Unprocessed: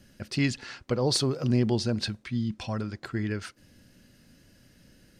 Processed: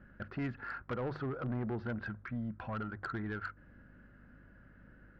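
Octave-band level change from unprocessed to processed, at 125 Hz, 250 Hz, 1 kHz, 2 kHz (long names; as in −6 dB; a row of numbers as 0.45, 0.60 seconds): −11.0, −10.5, −2.5, −4.0 decibels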